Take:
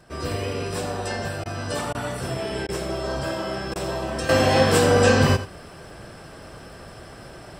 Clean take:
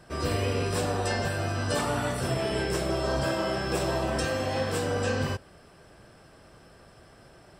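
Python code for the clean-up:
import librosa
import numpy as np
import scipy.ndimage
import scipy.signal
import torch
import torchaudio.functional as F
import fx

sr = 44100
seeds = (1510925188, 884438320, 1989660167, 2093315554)

y = fx.fix_declick_ar(x, sr, threshold=6.5)
y = fx.fix_interpolate(y, sr, at_s=(1.44, 1.93, 2.67, 3.74), length_ms=16.0)
y = fx.fix_echo_inverse(y, sr, delay_ms=87, level_db=-13.0)
y = fx.fix_level(y, sr, at_s=4.29, step_db=-11.5)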